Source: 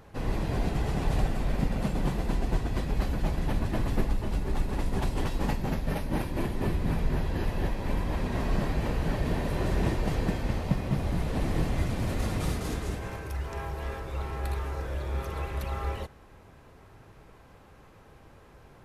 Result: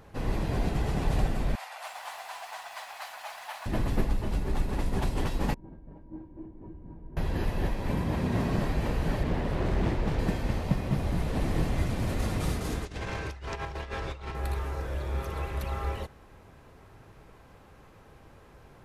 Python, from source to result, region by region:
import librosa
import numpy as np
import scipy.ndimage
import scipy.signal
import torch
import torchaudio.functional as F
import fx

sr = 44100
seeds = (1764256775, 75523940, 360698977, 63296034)

y = fx.chain(x, sr, fx.steep_highpass(hz=690.0, slope=48),
    fx.echo_crushed(ms=285, feedback_pct=35, bits=9, wet_db=-6.5), at=(1.55, 3.66))
y = fx.chain(y, sr, fx.bessel_lowpass(hz=570.0, order=2),
    fx.comb_fb(f0_hz=320.0, decay_s=0.22, harmonics='odd', damping=0.0, mix_pct=90), at=(5.54, 7.17))
y = fx.chain(y, sr, fx.highpass(hz=120.0, slope=12),
    fx.low_shelf(hz=200.0, db=11.0), at=(7.9, 8.58))
y = fx.chain(y, sr, fx.high_shelf(hz=5800.0, db=-10.0),
    fx.clip_hard(threshold_db=-19.0),
    fx.doppler_dist(depth_ms=0.49), at=(9.23, 10.19))
y = fx.chain(y, sr, fx.lowpass(hz=4600.0, slope=12),
    fx.over_compress(threshold_db=-36.0, ratio=-0.5),
    fx.high_shelf(hz=2700.0, db=11.5), at=(12.85, 14.35))